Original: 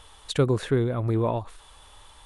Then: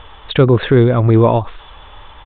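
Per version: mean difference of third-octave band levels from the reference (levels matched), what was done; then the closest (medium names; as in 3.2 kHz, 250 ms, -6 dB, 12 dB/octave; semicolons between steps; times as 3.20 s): 3.5 dB: resampled via 8 kHz; level-controlled noise filter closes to 2.7 kHz, open at -23 dBFS; loudness maximiser +15 dB; trim -1 dB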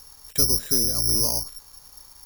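11.5 dB: octave divider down 1 oct, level +1 dB; in parallel at +0.5 dB: compression, threshold -28 dBFS, peak gain reduction 13 dB; on the sum: careless resampling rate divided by 8×, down filtered, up zero stuff; trim -12 dB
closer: first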